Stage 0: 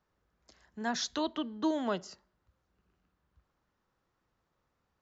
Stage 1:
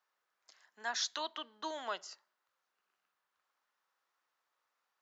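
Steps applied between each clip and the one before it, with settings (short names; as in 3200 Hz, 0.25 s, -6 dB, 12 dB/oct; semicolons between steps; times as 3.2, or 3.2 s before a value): HPF 930 Hz 12 dB/oct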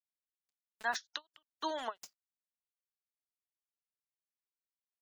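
bit-crush 8-bit; spectral gate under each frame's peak -25 dB strong; ending taper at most 510 dB/s; gain +4 dB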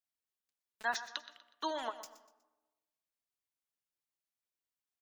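feedback echo 0.122 s, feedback 37%, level -14.5 dB; on a send at -18 dB: reverb RT60 1.2 s, pre-delay 55 ms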